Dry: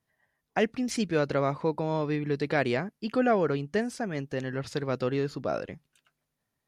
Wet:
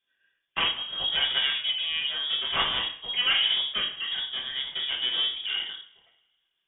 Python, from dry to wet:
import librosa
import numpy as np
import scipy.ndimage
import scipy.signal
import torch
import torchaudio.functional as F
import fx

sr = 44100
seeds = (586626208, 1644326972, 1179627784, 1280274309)

y = fx.self_delay(x, sr, depth_ms=0.31)
y = fx.rev_double_slope(y, sr, seeds[0], early_s=0.45, late_s=1.7, knee_db=-25, drr_db=-5.0)
y = fx.freq_invert(y, sr, carrier_hz=3500)
y = y * librosa.db_to_amplitude(-4.5)